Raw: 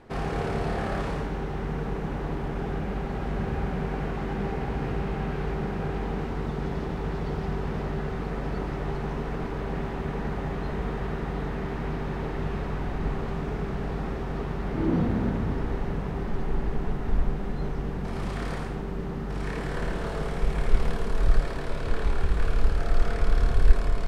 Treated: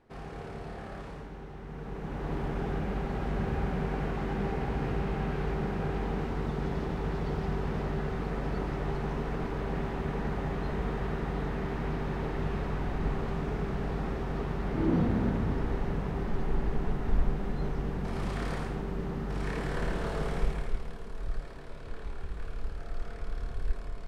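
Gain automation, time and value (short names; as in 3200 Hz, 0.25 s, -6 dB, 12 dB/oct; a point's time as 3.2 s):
1.64 s -12.5 dB
2.37 s -2 dB
20.4 s -2 dB
20.84 s -13.5 dB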